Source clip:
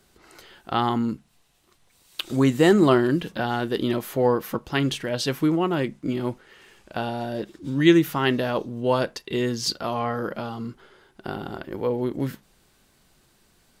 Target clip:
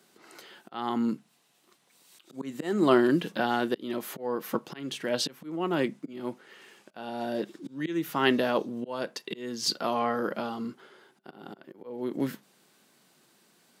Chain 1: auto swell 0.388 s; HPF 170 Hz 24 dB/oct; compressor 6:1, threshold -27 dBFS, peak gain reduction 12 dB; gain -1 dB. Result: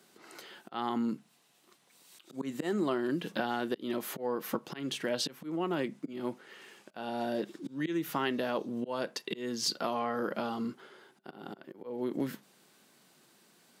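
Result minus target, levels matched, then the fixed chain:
compressor: peak gain reduction +12 dB
auto swell 0.388 s; HPF 170 Hz 24 dB/oct; gain -1 dB

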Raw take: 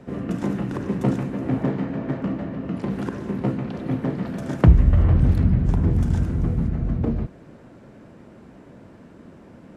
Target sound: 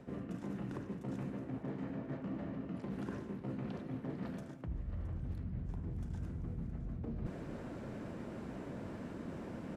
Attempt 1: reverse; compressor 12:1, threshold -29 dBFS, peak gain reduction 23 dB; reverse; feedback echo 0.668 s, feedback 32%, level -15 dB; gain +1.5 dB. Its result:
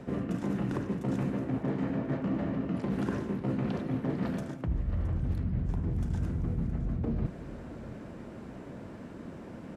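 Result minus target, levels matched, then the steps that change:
compressor: peak gain reduction -10 dB
change: compressor 12:1, threshold -40 dBFS, peak gain reduction 33 dB

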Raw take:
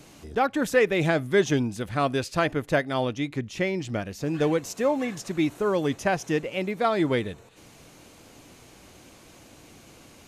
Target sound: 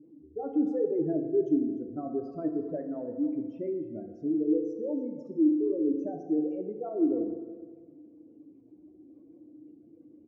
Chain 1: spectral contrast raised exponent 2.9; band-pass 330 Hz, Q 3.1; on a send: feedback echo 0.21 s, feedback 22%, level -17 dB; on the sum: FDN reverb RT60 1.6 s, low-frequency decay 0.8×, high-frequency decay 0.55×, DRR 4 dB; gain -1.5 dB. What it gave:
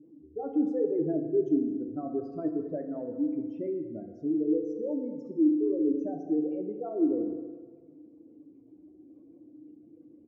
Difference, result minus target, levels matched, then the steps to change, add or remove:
echo 88 ms early
change: feedback echo 0.298 s, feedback 22%, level -17 dB

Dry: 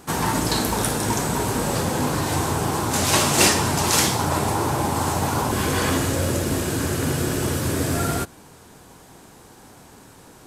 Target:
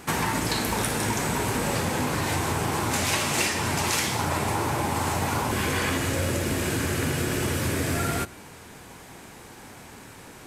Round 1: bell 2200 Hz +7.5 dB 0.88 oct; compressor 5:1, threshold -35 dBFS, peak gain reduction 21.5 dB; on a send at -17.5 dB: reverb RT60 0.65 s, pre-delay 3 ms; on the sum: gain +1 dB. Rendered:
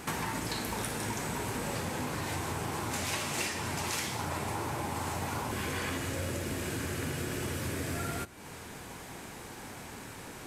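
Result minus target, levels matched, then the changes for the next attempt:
compressor: peak gain reduction +9 dB
change: compressor 5:1, threshold -24 dBFS, peak gain reduction 13 dB

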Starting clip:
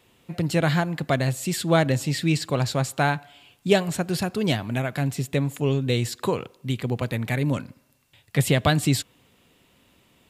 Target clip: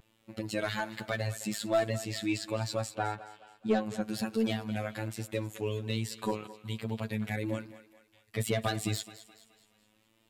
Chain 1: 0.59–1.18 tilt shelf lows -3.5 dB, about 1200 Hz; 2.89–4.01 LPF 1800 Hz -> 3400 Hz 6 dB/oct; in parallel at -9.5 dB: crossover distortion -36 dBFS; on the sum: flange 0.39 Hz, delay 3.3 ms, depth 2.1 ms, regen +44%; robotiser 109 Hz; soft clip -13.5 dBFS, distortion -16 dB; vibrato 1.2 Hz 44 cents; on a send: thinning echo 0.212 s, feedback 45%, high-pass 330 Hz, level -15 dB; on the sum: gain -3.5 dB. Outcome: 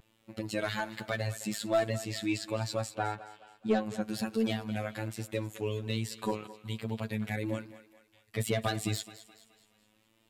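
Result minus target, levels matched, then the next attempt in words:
crossover distortion: distortion +10 dB
0.59–1.18 tilt shelf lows -3.5 dB, about 1200 Hz; 2.89–4.01 LPF 1800 Hz -> 3400 Hz 6 dB/oct; in parallel at -9.5 dB: crossover distortion -47 dBFS; on the sum: flange 0.39 Hz, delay 3.3 ms, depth 2.1 ms, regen +44%; robotiser 109 Hz; soft clip -13.5 dBFS, distortion -16 dB; vibrato 1.2 Hz 44 cents; on a send: thinning echo 0.212 s, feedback 45%, high-pass 330 Hz, level -15 dB; on the sum: gain -3.5 dB

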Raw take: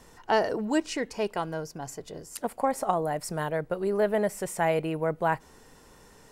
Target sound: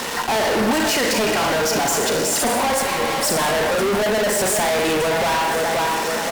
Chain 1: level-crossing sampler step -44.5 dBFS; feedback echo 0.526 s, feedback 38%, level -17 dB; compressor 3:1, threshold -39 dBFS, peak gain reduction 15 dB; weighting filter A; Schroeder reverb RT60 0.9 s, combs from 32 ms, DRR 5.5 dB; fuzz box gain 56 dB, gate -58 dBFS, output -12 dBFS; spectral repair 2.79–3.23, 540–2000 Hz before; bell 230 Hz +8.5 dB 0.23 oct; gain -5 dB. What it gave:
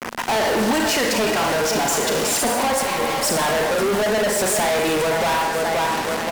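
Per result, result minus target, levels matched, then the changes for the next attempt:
level-crossing sampler: distortion +12 dB; compressor: peak gain reduction +4.5 dB
change: level-crossing sampler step -55 dBFS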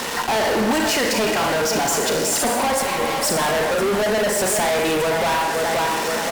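compressor: peak gain reduction +4.5 dB
change: compressor 3:1, threshold -32 dBFS, peak gain reduction 10.5 dB

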